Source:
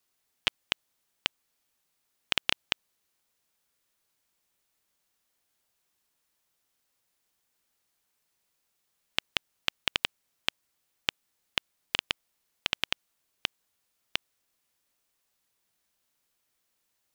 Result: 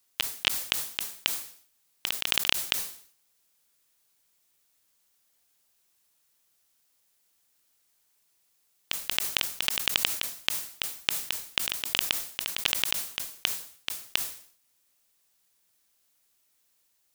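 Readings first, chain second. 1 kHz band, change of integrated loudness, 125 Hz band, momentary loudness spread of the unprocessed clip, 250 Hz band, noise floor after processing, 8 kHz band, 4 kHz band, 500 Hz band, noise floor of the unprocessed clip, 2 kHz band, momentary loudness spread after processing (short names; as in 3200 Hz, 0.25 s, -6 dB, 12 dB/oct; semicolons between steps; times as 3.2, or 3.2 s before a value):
+2.0 dB, +5.0 dB, +2.0 dB, 6 LU, +2.0 dB, -71 dBFS, +14.5 dB, +4.0 dB, +2.0 dB, -78 dBFS, +3.0 dB, 9 LU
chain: high shelf 4000 Hz +7.5 dB; reverse echo 0.271 s -6 dB; sustainer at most 110 dB/s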